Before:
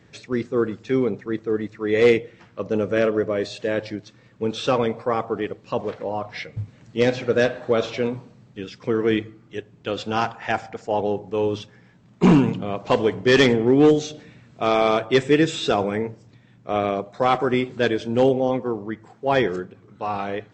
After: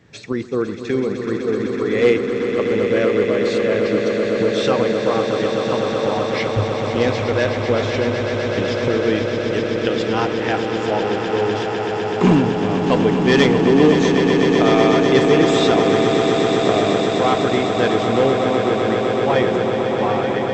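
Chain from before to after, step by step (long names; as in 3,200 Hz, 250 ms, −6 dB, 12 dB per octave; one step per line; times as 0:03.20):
camcorder AGC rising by 25 dB per second
on a send: echo that builds up and dies away 126 ms, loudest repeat 8, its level −9 dB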